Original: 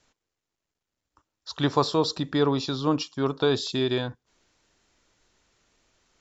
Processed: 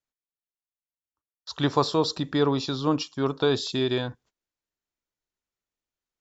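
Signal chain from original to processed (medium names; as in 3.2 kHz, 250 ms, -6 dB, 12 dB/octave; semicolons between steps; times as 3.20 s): gate -54 dBFS, range -26 dB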